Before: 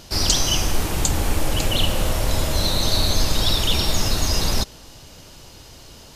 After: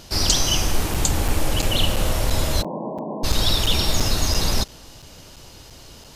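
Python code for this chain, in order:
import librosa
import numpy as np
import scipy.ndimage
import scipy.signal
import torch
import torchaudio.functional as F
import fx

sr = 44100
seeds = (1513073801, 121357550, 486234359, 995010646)

y = fx.brickwall_bandpass(x, sr, low_hz=150.0, high_hz=1100.0, at=(2.61, 3.23), fade=0.02)
y = fx.buffer_crackle(y, sr, first_s=0.94, period_s=0.34, block=256, kind='zero')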